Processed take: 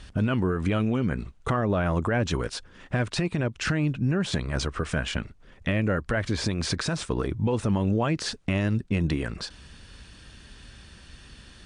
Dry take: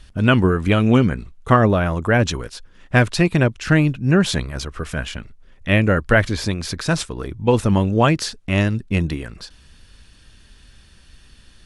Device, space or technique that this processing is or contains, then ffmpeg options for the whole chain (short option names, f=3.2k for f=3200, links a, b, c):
podcast mastering chain: -af "highpass=f=64:p=1,equalizer=f=7.2k:w=0.33:g=-3.5,deesser=0.6,acompressor=threshold=-19dB:ratio=2.5,alimiter=limit=-21dB:level=0:latency=1:release=212,volume=5dB" -ar 22050 -c:a libmp3lame -b:a 96k